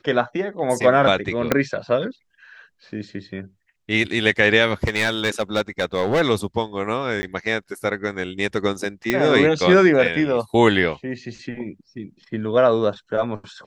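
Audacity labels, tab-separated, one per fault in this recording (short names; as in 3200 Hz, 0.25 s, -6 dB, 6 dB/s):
1.520000	1.520000	pop -3 dBFS
4.840000	6.220000	clipped -14.5 dBFS
7.220000	7.230000	gap 10 ms
9.100000	9.100000	pop -5 dBFS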